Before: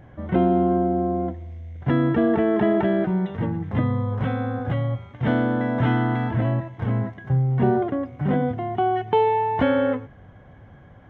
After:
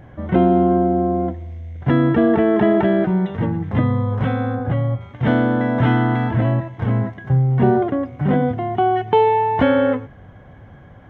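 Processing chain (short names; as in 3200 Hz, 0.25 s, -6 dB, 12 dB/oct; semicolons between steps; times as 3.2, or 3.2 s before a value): 4.55–5.01 high shelf 2600 Hz -10.5 dB; gain +4.5 dB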